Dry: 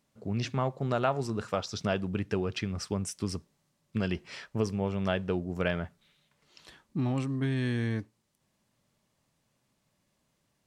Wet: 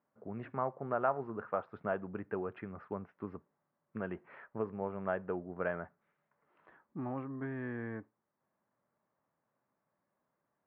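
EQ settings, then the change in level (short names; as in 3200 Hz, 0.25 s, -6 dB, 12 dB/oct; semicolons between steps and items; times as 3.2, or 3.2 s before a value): HPF 730 Hz 6 dB/oct; LPF 1600 Hz 24 dB/oct; air absorption 260 m; +1.0 dB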